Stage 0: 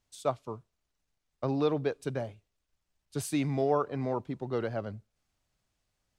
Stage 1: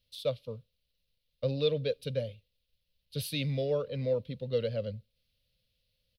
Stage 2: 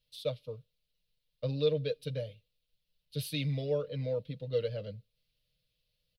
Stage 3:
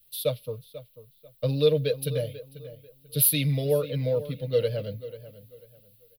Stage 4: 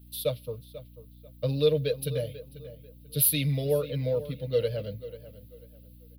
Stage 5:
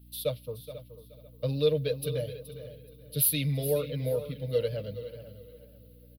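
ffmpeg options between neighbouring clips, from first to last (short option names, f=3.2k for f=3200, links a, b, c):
-af "firequalizer=gain_entry='entry(110,0);entry(230,-4);entry(350,-19);entry(510,7);entry(750,-23);entry(2800,5);entry(4100,8);entry(7100,-18);entry(11000,2)':delay=0.05:min_phase=1,volume=2dB"
-af "aecho=1:1:6.5:0.65,volume=-4dB"
-filter_complex "[0:a]aexciter=amount=5.1:drive=9.8:freq=10k,asplit=2[a][b];[b]adelay=491,lowpass=f=4k:p=1,volume=-15dB,asplit=2[c][d];[d]adelay=491,lowpass=f=4k:p=1,volume=0.28,asplit=2[e][f];[f]adelay=491,lowpass=f=4k:p=1,volume=0.28[g];[a][c][e][g]amix=inputs=4:normalize=0,volume=7.5dB"
-af "aeval=exprs='val(0)+0.00398*(sin(2*PI*60*n/s)+sin(2*PI*2*60*n/s)/2+sin(2*PI*3*60*n/s)/3+sin(2*PI*4*60*n/s)/4+sin(2*PI*5*60*n/s)/5)':c=same,volume=-2dB"
-af "aecho=1:1:424|848|1272:0.211|0.0507|0.0122,volume=-2dB" -ar 48000 -c:a libvorbis -b:a 192k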